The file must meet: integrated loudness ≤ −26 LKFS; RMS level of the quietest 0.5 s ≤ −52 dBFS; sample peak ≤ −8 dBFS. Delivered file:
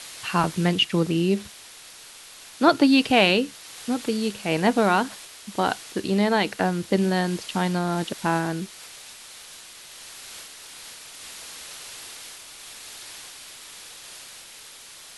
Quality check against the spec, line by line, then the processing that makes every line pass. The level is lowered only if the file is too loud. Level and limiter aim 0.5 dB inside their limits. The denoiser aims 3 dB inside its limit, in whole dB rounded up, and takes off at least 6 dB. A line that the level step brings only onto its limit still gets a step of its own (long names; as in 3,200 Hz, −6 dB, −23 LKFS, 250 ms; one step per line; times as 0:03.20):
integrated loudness −23.0 LKFS: out of spec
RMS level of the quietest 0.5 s −45 dBFS: out of spec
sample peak −5.0 dBFS: out of spec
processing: broadband denoise 7 dB, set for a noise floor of −45 dBFS
level −3.5 dB